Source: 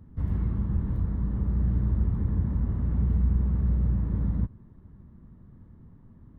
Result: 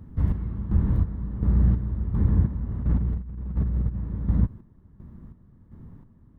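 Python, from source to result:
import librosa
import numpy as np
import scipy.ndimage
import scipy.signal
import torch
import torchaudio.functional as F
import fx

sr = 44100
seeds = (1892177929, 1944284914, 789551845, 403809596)

y = fx.over_compress(x, sr, threshold_db=-26.0, ratio=-0.5, at=(2.68, 3.94), fade=0.02)
y = fx.chopper(y, sr, hz=1.4, depth_pct=65, duty_pct=45)
y = y * 10.0 ** (6.0 / 20.0)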